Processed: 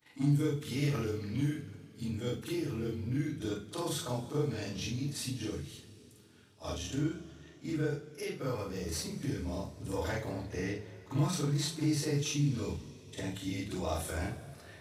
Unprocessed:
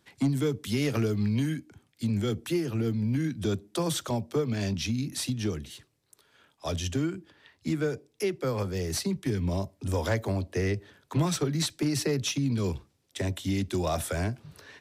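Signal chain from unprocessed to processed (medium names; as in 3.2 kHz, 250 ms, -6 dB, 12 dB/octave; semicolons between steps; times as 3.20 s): short-time spectra conjugated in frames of 98 ms; two-slope reverb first 0.27 s, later 3.8 s, from -22 dB, DRR 0.5 dB; trim -5 dB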